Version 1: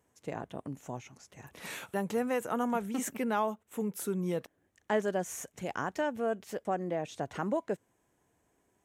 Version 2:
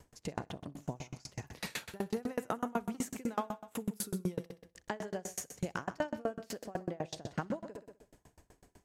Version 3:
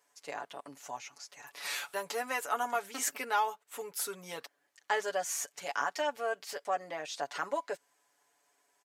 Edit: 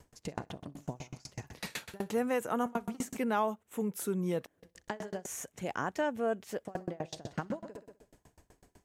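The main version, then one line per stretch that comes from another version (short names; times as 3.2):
2
2.1–2.66 from 1
3.18–4.6 from 1
5.26–6.68 from 1
not used: 3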